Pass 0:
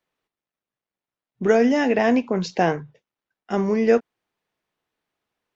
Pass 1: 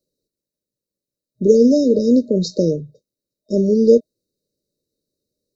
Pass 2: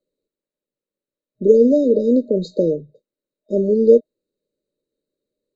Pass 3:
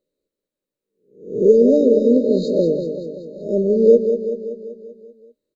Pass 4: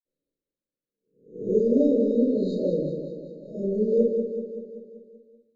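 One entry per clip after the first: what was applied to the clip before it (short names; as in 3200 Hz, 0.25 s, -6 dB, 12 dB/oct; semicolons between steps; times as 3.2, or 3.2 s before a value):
FFT band-reject 620–3700 Hz; gain +6 dB
running mean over 8 samples; bell 89 Hz -15 dB 2.5 oct; gain +3.5 dB
spectral swells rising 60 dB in 0.48 s; on a send: feedback echo 0.192 s, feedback 58%, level -8 dB; on the sum: gain -1 dB
reverb RT60 0.55 s, pre-delay 46 ms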